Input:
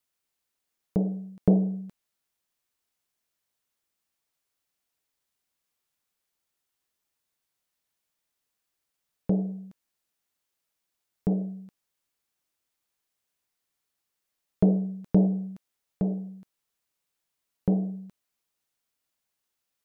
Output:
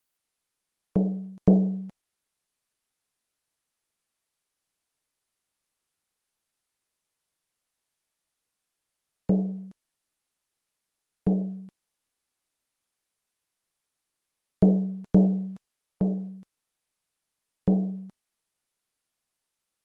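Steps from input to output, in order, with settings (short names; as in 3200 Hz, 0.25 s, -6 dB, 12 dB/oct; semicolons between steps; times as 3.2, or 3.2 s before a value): gain +2 dB; Opus 24 kbps 48000 Hz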